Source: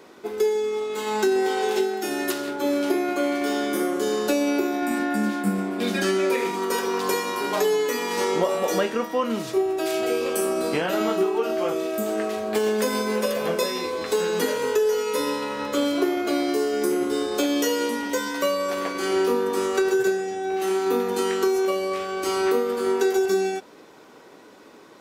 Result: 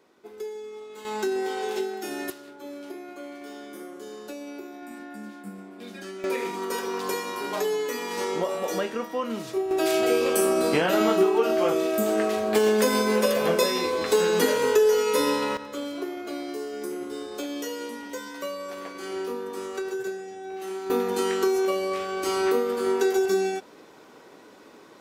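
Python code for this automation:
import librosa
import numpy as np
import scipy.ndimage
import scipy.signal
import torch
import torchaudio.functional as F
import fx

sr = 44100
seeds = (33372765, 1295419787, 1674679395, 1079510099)

y = fx.gain(x, sr, db=fx.steps((0.0, -13.5), (1.05, -6.0), (2.3, -16.0), (6.24, -5.0), (9.71, 2.0), (15.57, -10.0), (20.9, -1.5)))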